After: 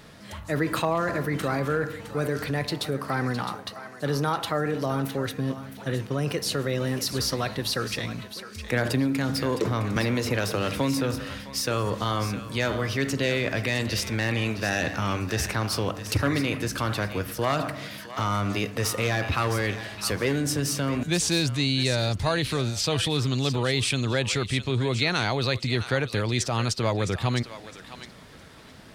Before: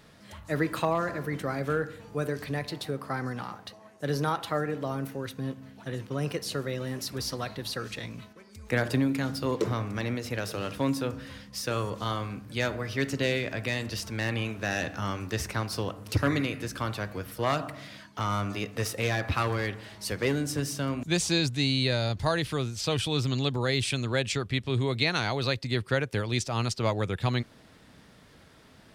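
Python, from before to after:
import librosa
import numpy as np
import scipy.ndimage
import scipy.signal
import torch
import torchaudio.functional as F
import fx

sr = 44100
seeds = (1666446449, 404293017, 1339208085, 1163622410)

p1 = fx.over_compress(x, sr, threshold_db=-33.0, ratio=-1.0)
p2 = x + (p1 * librosa.db_to_amplitude(-2.0))
p3 = fx.echo_thinned(p2, sr, ms=661, feedback_pct=24, hz=990.0, wet_db=-10.0)
y = fx.band_squash(p3, sr, depth_pct=100, at=(9.96, 11.16))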